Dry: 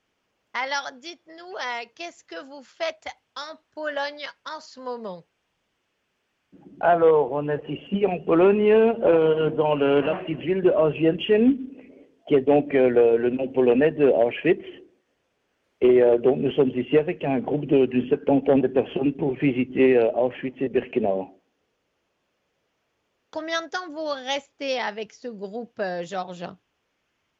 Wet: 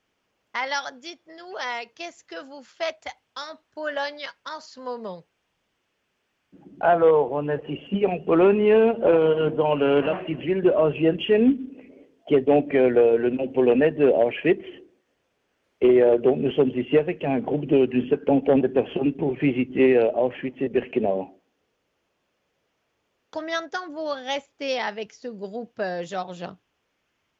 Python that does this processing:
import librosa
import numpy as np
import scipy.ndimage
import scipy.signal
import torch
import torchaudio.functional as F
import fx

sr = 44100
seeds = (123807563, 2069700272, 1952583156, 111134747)

y = fx.high_shelf(x, sr, hz=3800.0, db=-5.5, at=(23.44, 24.48))